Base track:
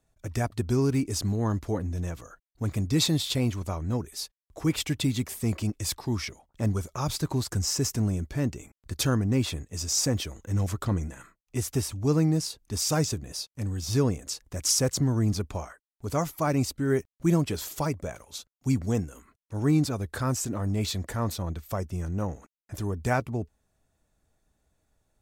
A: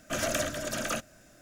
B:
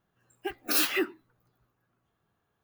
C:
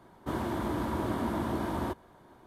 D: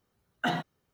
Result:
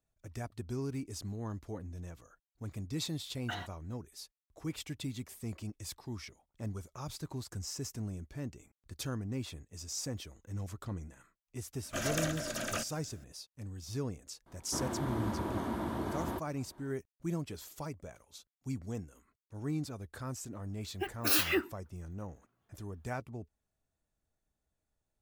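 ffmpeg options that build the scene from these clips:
-filter_complex "[0:a]volume=-13dB[a];[4:a]highpass=f=1.3k:p=1,atrim=end=0.93,asetpts=PTS-STARTPTS,volume=-6.5dB,afade=t=in:d=0.004:c=hsin,afade=t=out:st=0.926:d=0.004:c=hsin,adelay=134505S[b];[1:a]atrim=end=1.41,asetpts=PTS-STARTPTS,volume=-4.5dB,afade=t=in:d=0.004:c=hsin,afade=t=out:st=1.406:d=0.004:c=hsin,adelay=11830[c];[3:a]atrim=end=2.46,asetpts=PTS-STARTPTS,volume=-4.5dB,afade=t=in:d=0.004:c=hsin,afade=t=out:st=2.456:d=0.004:c=hsin,adelay=14460[d];[2:a]atrim=end=2.63,asetpts=PTS-STARTPTS,volume=-2.5dB,afade=t=in:d=0.004:c=hsin,afade=t=out:st=2.626:d=0.004:c=hsin,adelay=20560[e];[a][b][c][d][e]amix=inputs=5:normalize=0"

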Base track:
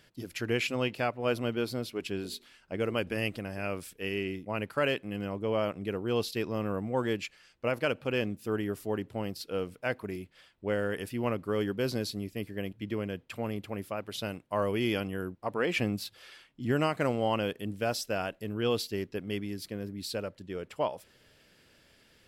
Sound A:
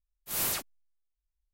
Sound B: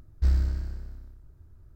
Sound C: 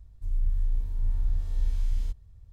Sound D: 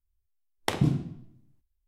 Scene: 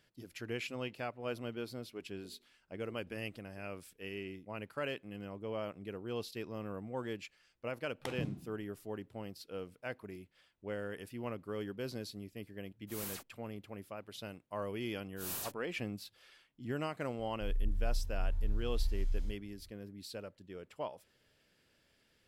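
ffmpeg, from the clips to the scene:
-filter_complex "[1:a]asplit=2[a][b];[0:a]volume=-10dB[c];[b]bandreject=f=2.1k:w=7.7[d];[3:a]asplit=2[e][f];[f]adelay=38,volume=-10.5dB[g];[e][g]amix=inputs=2:normalize=0[h];[4:a]atrim=end=1.87,asetpts=PTS-STARTPTS,volume=-15dB,afade=t=in:d=0.004:c=hsin,afade=t=out:st=1.866:d=0.004:c=hsin,adelay=7370[i];[a]atrim=end=1.53,asetpts=PTS-STARTPTS,volume=-13.5dB,afade=t=in:d=0.004:c=hsin,afade=t=out:st=1.526:d=0.004:c=hsin,adelay=12610[j];[d]atrim=end=1.53,asetpts=PTS-STARTPTS,volume=-10.5dB,afade=t=in:d=0.004:c=hsin,afade=t=out:st=1.526:d=0.004:c=hsin,adelay=14900[k];[h]atrim=end=2.52,asetpts=PTS-STARTPTS,volume=-8.5dB,afade=t=in:d=0.004:c=hsin,afade=t=out:st=2.516:d=0.004:c=hsin,adelay=17190[l];[c][i][j][k][l]amix=inputs=5:normalize=0"

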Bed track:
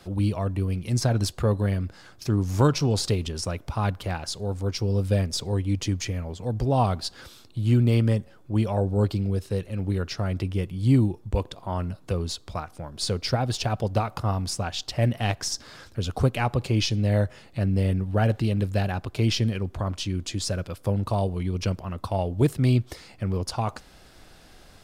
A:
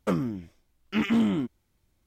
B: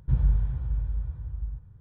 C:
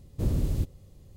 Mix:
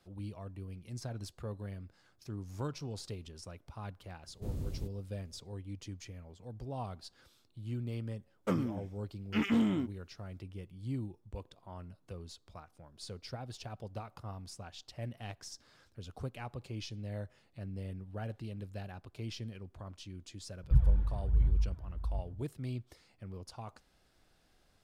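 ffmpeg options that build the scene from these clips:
-filter_complex "[0:a]volume=-18.5dB[a];[2:a]aphaser=in_gain=1:out_gain=1:delay=3.6:decay=0.64:speed=1.2:type=sinusoidal[b];[3:a]atrim=end=1.16,asetpts=PTS-STARTPTS,volume=-12dB,afade=t=in:d=0.004:c=hsin,afade=t=out:st=1.156:d=0.004:c=hsin,adelay=4230[c];[1:a]atrim=end=2.06,asetpts=PTS-STARTPTS,volume=-5.5dB,afade=t=in:d=0.1,afade=t=out:st=1.96:d=0.1,adelay=8400[d];[b]atrim=end=1.8,asetpts=PTS-STARTPTS,volume=-7dB,afade=t=in:d=0.004:c=hsin,afade=t=out:st=1.796:d=0.004:c=hsin,adelay=20630[e];[a][c][d][e]amix=inputs=4:normalize=0"

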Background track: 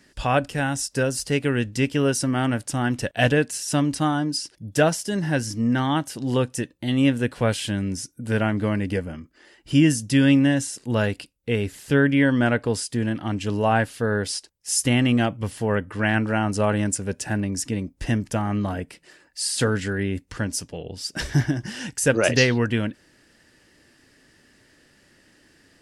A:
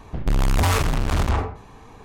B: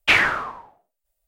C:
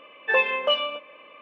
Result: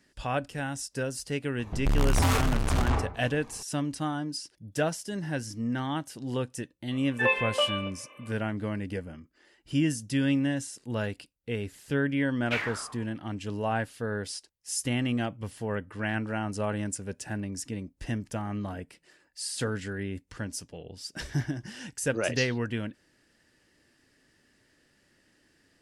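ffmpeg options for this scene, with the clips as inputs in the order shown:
-filter_complex "[0:a]volume=-9dB[a];[1:a]atrim=end=2.04,asetpts=PTS-STARTPTS,volume=-5dB,afade=t=in:d=0.004:c=hsin,afade=t=out:st=2.036:d=0.004:c=hsin,adelay=1590[b];[3:a]atrim=end=1.41,asetpts=PTS-STARTPTS,volume=-4dB,afade=t=in:d=0.004:c=hsin,afade=t=out:st=1.406:d=0.004:c=hsin,adelay=6910[c];[2:a]atrim=end=1.27,asetpts=PTS-STARTPTS,volume=-15.5dB,afade=t=in:d=0.004:c=hsin,afade=t=out:st=1.266:d=0.004:c=hsin,adelay=12430[d];[a][b][c][d]amix=inputs=4:normalize=0"

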